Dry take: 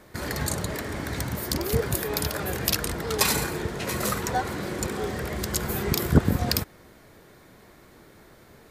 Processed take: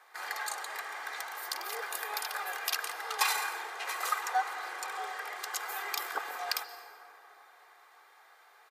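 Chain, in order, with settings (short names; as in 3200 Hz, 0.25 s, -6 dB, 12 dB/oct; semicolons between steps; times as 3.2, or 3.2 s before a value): HPF 810 Hz 24 dB/oct; high shelf 2800 Hz -11 dB; comb 2.5 ms, depth 55%; plate-style reverb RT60 3.7 s, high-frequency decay 0.3×, pre-delay 0.115 s, DRR 11.5 dB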